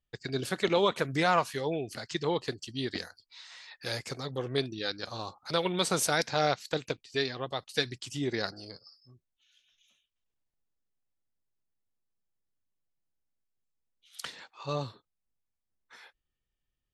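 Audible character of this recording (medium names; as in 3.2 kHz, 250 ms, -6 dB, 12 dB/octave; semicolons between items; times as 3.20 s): noise floor -85 dBFS; spectral tilt -4.0 dB/octave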